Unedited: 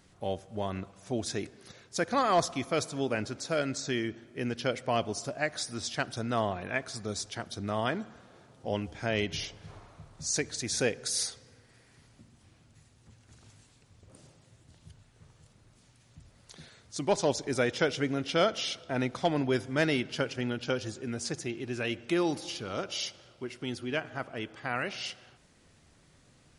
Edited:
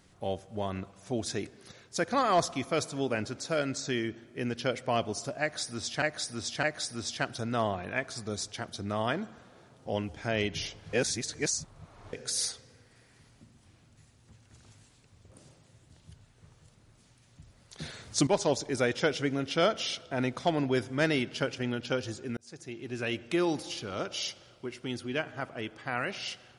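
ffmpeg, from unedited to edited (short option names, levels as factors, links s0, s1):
-filter_complex "[0:a]asplit=8[s0][s1][s2][s3][s4][s5][s6][s7];[s0]atrim=end=6.022[s8];[s1]atrim=start=5.408:end=6.022[s9];[s2]atrim=start=5.408:end=9.712[s10];[s3]atrim=start=9.708:end=10.912,asetpts=PTS-STARTPTS,areverse[s11];[s4]atrim=start=10.908:end=16.572[s12];[s5]atrim=start=16.568:end=17.052,asetpts=PTS-STARTPTS,volume=3.16[s13];[s6]atrim=start=17.048:end=21.15,asetpts=PTS-STARTPTS,afade=t=out:st=4.098:d=0.004:c=hsin[s14];[s7]atrim=start=21.15,asetpts=PTS-STARTPTS,afade=t=in:d=0.68[s15];[s8][s9]acrossfade=d=0.004:c1=hsin:c2=hsin[s16];[s16][s10]acrossfade=d=0.004:c1=hsin:c2=hsin[s17];[s17][s11]acrossfade=d=0.004:c1=hsin:c2=hsin[s18];[s18][s12]acrossfade=d=0.004:c1=hsin:c2=hsin[s19];[s19][s13]acrossfade=d=0.004:c1=hsin:c2=hsin[s20];[s14][s15]concat=n=2:v=0:a=1[s21];[s20][s21]acrossfade=d=0.004:c1=hsin:c2=hsin"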